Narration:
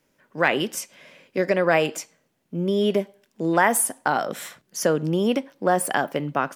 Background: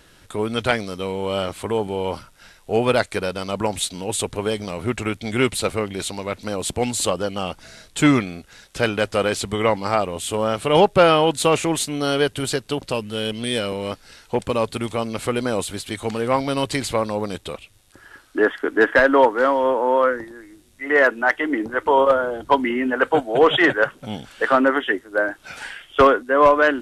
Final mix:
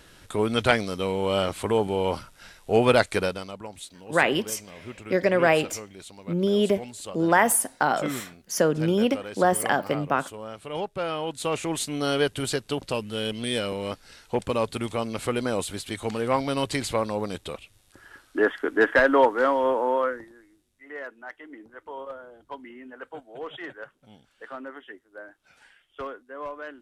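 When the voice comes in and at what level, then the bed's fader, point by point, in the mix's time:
3.75 s, -0.5 dB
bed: 3.25 s -0.5 dB
3.61 s -16.5 dB
10.98 s -16.5 dB
11.95 s -4 dB
19.8 s -4 dB
21.01 s -22 dB

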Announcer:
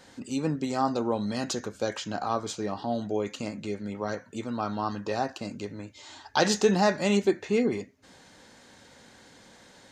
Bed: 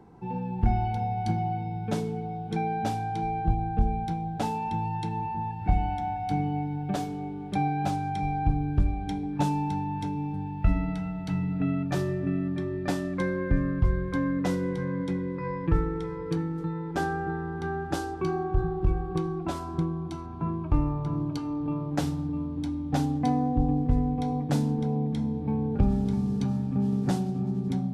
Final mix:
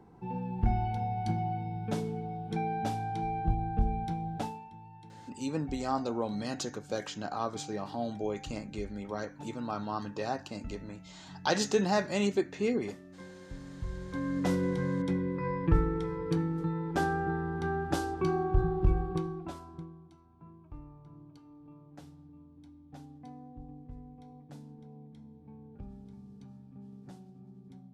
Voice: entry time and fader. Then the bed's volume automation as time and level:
5.10 s, -5.0 dB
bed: 4.38 s -4 dB
4.71 s -20.5 dB
13.57 s -20.5 dB
14.52 s -1 dB
19.02 s -1 dB
20.17 s -23 dB

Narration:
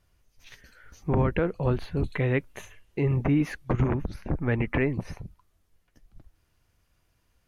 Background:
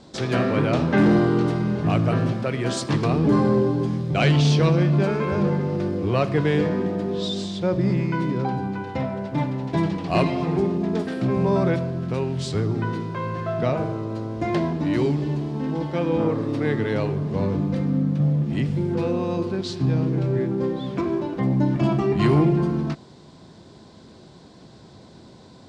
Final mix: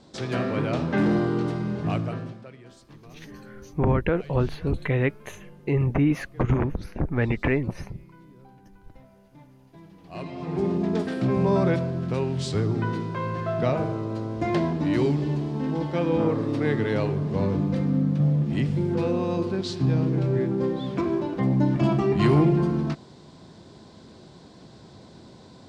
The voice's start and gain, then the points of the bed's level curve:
2.70 s, +2.0 dB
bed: 1.93 s -5 dB
2.77 s -26.5 dB
9.84 s -26.5 dB
10.71 s -1 dB

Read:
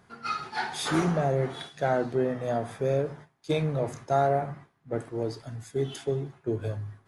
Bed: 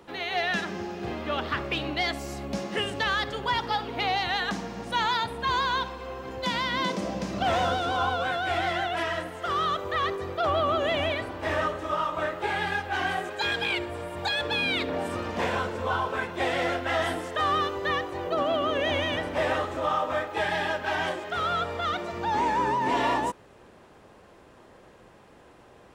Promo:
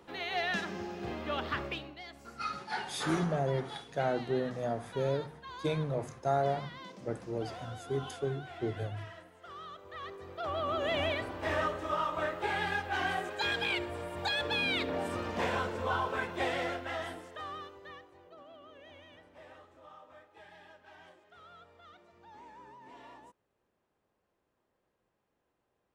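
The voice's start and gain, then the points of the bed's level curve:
2.15 s, -5.5 dB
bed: 1.66 s -5.5 dB
1.97 s -20 dB
9.74 s -20 dB
10.99 s -4.5 dB
16.38 s -4.5 dB
18.41 s -27.5 dB

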